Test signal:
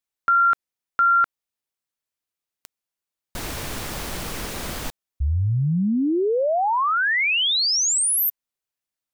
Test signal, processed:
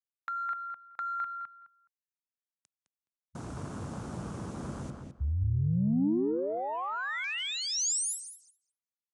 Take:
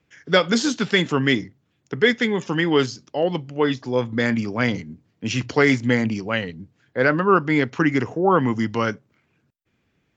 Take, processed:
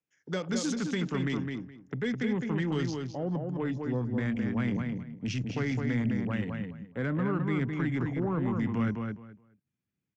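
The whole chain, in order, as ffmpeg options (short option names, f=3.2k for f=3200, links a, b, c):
-filter_complex "[0:a]highpass=130,afwtdn=0.0251,asubboost=boost=4:cutoff=220,acrossover=split=370[a][b];[a]alimiter=limit=-18dB:level=0:latency=1:release=12[c];[b]acompressor=threshold=-28dB:ratio=4:attack=4.7:release=86:knee=6:detection=peak[d];[c][d]amix=inputs=2:normalize=0,asoftclip=type=tanh:threshold=-13dB,aexciter=amount=2.2:drive=4.6:freq=5.8k,asplit=2[e][f];[f]adelay=210,lowpass=f=3.2k:p=1,volume=-4dB,asplit=2[g][h];[h]adelay=210,lowpass=f=3.2k:p=1,volume=0.2,asplit=2[i][j];[j]adelay=210,lowpass=f=3.2k:p=1,volume=0.2[k];[g][i][k]amix=inputs=3:normalize=0[l];[e][l]amix=inputs=2:normalize=0,aresample=22050,aresample=44100,volume=-7.5dB"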